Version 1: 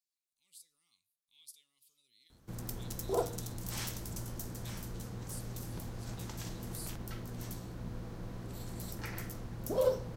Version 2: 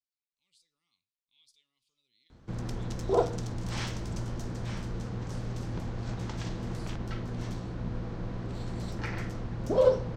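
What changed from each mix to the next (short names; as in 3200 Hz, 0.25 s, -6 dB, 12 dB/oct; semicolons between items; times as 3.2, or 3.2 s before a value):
background +7.5 dB; master: add air absorption 130 m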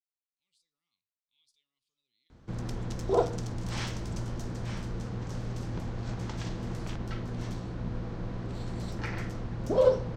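speech -7.0 dB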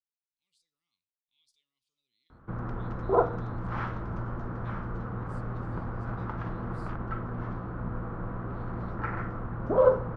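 background: add synth low-pass 1300 Hz, resonance Q 3.5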